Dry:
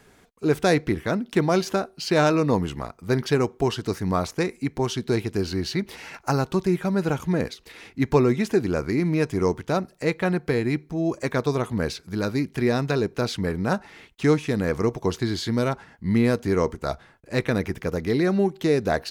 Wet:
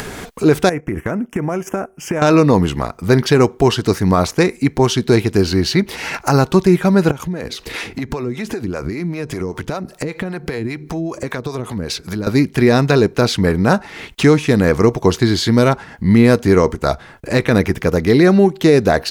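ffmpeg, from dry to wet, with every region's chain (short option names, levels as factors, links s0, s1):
-filter_complex "[0:a]asettb=1/sr,asplit=3[s0][s1][s2];[s0]atrim=end=0.694[s3];[s1]atrim=start=0.69:end=2.22,asetpts=PTS-STARTPTS,afade=t=in:d=0.004:c=qsin,afade=t=out:st=1.526:d=0.004:c=qsin,asuperstop=centerf=4100:order=4:qfactor=1.1,acompressor=threshold=0.0398:ratio=10:attack=3.2:release=140:knee=1:detection=peak,agate=range=0.251:threshold=0.0126:ratio=16:release=100:detection=peak[s4];[s2]atrim=start=2.216[s5];[s3][s4]acrossfade=d=0.004:c1=hsin:c2=qsin[s6];[s6][s5]acrossfade=d=0.004:c1=qsin:c2=hsin,asettb=1/sr,asplit=3[s7][s8][s9];[s7]atrim=end=7.114[s10];[s8]atrim=start=7.11:end=12.27,asetpts=PTS-STARTPTS,afade=t=in:d=0.004:c=qsin,afade=t=out:st=5.156:d=0.004:c=qsin,acompressor=threshold=0.0282:ratio=6:attack=3.2:release=140:knee=1:detection=peak,acrossover=split=460[s11][s12];[s11]aeval=exprs='val(0)*(1-0.7/2+0.7/2*cos(2*PI*5.1*n/s))':c=same[s13];[s12]aeval=exprs='val(0)*(1-0.7/2-0.7/2*cos(2*PI*5.1*n/s))':c=same[s14];[s13][s14]amix=inputs=2:normalize=0[s15];[s9]atrim=start=12.266[s16];[s10][s15]acrossfade=d=0.004:c1=hsin:c2=qsin[s17];[s17][s16]acrossfade=d=0.004:c1=qsin:c2=hsin,acompressor=mode=upward:threshold=0.0447:ratio=2.5,alimiter=level_in=3.98:limit=0.891:release=50:level=0:latency=1,volume=0.891"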